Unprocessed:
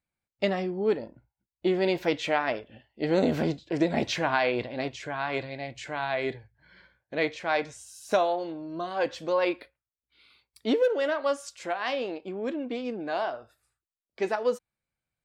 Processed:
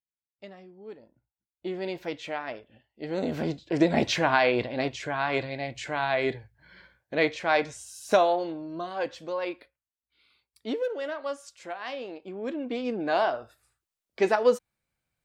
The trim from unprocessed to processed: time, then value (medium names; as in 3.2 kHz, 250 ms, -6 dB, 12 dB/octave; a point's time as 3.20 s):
0.78 s -19 dB
1.75 s -7.5 dB
3.10 s -7.5 dB
3.82 s +3 dB
8.36 s +3 dB
9.36 s -6 dB
12.04 s -6 dB
13.11 s +5 dB